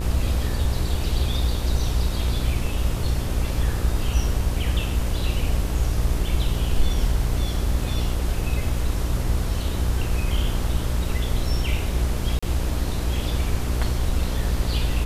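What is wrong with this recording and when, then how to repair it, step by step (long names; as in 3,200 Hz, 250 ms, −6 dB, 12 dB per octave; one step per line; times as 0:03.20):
mains buzz 60 Hz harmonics 22 −26 dBFS
0:12.39–0:12.43: drop-out 35 ms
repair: hum removal 60 Hz, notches 22
repair the gap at 0:12.39, 35 ms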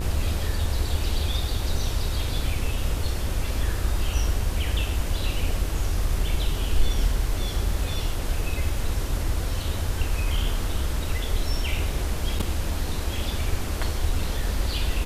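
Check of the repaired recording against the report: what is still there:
none of them is left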